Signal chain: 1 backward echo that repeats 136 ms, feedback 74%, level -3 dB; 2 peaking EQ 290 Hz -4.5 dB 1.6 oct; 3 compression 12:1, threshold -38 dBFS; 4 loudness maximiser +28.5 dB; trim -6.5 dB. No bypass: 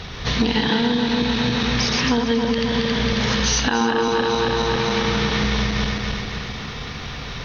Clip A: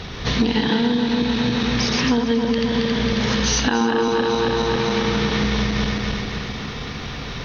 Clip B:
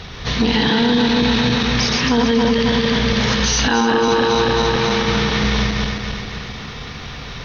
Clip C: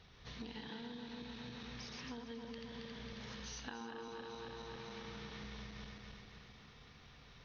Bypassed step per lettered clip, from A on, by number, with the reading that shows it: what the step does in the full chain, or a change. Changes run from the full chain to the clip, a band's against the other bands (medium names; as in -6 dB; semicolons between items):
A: 2, 250 Hz band +3.0 dB; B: 3, mean gain reduction 6.5 dB; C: 4, crest factor change +5.0 dB